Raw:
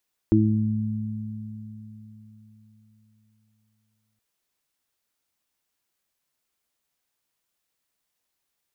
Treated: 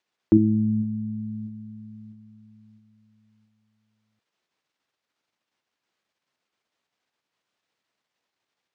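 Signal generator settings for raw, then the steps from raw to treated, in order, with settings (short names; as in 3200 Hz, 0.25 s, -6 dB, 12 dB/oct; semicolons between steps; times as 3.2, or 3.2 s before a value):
additive tone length 3.87 s, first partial 108 Hz, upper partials 1/5 dB, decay 4.12 s, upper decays 3.83/0.63 s, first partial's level -19.5 dB
Bessel high-pass 160 Hz, order 2; in parallel at +1 dB: level quantiser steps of 10 dB; on the sum: air absorption 140 m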